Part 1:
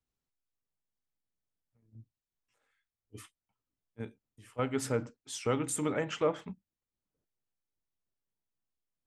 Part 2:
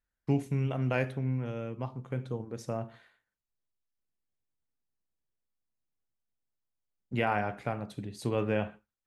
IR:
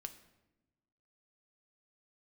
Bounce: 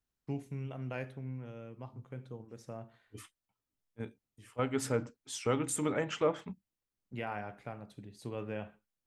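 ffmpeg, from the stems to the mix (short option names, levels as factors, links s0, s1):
-filter_complex "[0:a]volume=0.944[s0];[1:a]volume=0.316[s1];[s0][s1]amix=inputs=2:normalize=0"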